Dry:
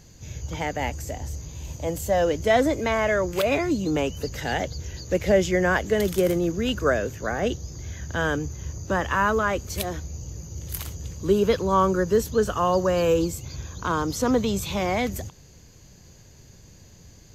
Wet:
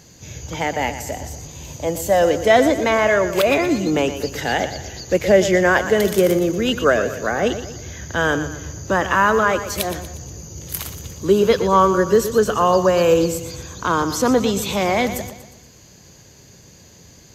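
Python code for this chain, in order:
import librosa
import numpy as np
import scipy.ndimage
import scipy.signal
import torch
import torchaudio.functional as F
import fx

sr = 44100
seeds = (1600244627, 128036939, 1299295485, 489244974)

p1 = fx.highpass(x, sr, hz=180.0, slope=6)
p2 = p1 + fx.echo_feedback(p1, sr, ms=119, feedback_pct=45, wet_db=-11.5, dry=0)
y = F.gain(torch.from_numpy(p2), 6.5).numpy()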